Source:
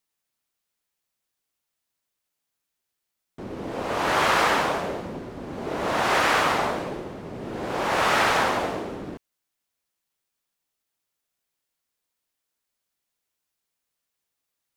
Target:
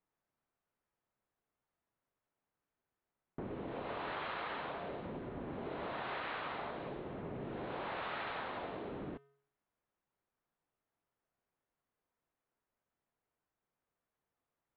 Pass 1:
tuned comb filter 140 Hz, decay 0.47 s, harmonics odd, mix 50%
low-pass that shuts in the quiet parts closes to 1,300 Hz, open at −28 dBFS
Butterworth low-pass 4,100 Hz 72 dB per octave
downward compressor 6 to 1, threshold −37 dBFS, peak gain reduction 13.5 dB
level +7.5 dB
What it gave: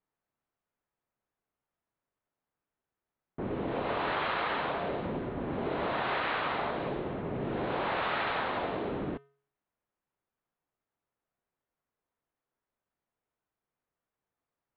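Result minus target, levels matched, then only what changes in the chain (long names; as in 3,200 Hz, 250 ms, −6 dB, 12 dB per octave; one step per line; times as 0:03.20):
downward compressor: peak gain reduction −9.5 dB
change: downward compressor 6 to 1, threshold −48.5 dBFS, peak gain reduction 23 dB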